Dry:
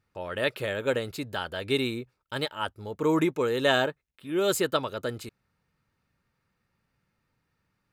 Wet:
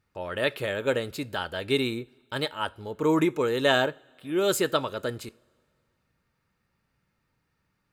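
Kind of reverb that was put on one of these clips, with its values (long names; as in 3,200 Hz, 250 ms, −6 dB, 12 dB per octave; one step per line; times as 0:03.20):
coupled-rooms reverb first 0.34 s, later 2.1 s, from −20 dB, DRR 17 dB
level +1 dB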